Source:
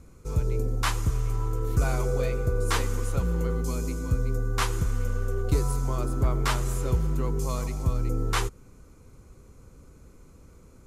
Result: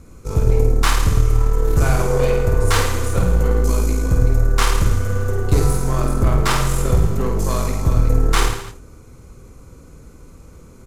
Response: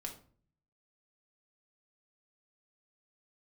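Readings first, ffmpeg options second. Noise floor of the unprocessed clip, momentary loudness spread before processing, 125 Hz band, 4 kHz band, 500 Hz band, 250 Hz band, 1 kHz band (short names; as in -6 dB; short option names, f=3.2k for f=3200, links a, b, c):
-53 dBFS, 4 LU, +9.0 dB, +9.5 dB, +10.0 dB, +8.5 dB, +9.5 dB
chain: -af "acontrast=82,aeval=exprs='0.422*(cos(1*acos(clip(val(0)/0.422,-1,1)))-cos(1*PI/2))+0.0422*(cos(6*acos(clip(val(0)/0.422,-1,1)))-cos(6*PI/2))':c=same,aecho=1:1:50|105|165.5|232|305.3:0.631|0.398|0.251|0.158|0.1"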